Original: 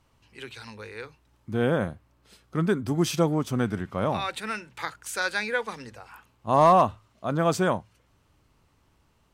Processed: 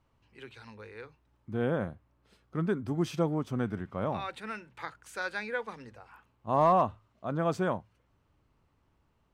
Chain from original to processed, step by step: high shelf 3700 Hz -12 dB; gain -5.5 dB

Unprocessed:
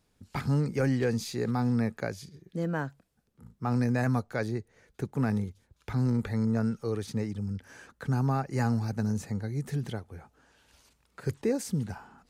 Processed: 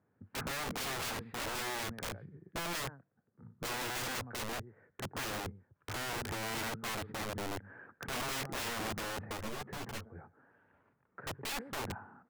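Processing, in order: elliptic band-pass 100–1700 Hz, stop band 50 dB; echo 0.117 s -20.5 dB; wrapped overs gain 31.5 dB; 9.37–10.16 ensemble effect; gain -1.5 dB

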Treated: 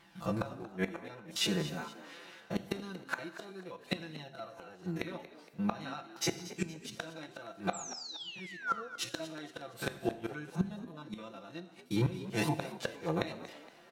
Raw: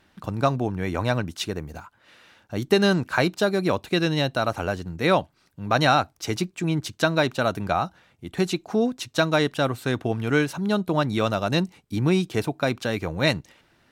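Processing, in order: stepped spectrum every 50 ms; HPF 170 Hz 6 dB/oct; comb 5.9 ms, depth 94%; painted sound fall, 7.73–8.83, 1100–7900 Hz -20 dBFS; flange 0.24 Hz, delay 0.9 ms, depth 5.2 ms, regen +40%; flipped gate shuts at -22 dBFS, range -24 dB; frequency-shifting echo 0.233 s, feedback 41%, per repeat +65 Hz, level -15 dB; non-linear reverb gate 0.34 s falling, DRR 11.5 dB; gain +3 dB

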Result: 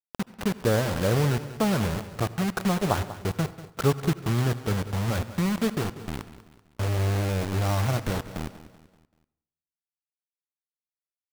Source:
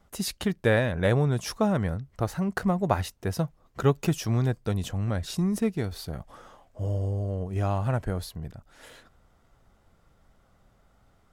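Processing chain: elliptic low-pass 1500 Hz, stop band 40 dB; bell 630 Hz -3 dB 0.79 oct; de-hum 256.4 Hz, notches 3; in parallel at -3 dB: compressor 10:1, threshold -37 dBFS, peak gain reduction 20 dB; on the sum: bit-crush 5-bit; feedback echo 0.192 s, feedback 44%, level -15 dB; on a send at -17 dB: reverb RT60 0.75 s, pre-delay 71 ms

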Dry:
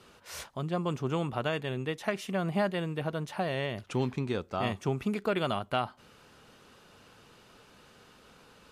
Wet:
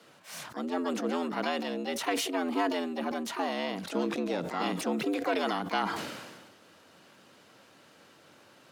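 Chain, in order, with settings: harmoniser +7 st -7 dB; frequency shift +85 Hz; sustainer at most 39 dB/s; gain -1.5 dB

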